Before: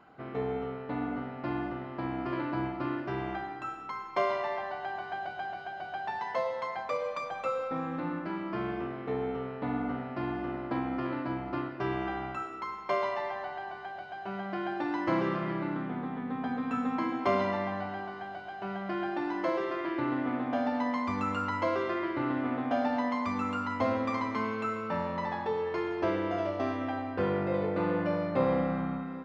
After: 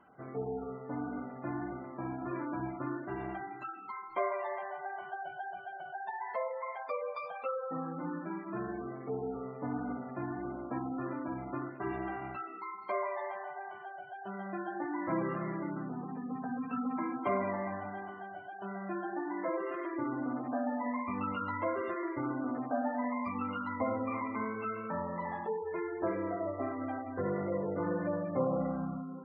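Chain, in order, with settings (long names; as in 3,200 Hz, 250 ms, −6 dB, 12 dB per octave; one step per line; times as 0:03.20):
gate on every frequency bin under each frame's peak −20 dB strong
flanger 1.6 Hz, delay 3.1 ms, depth 4.7 ms, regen −55%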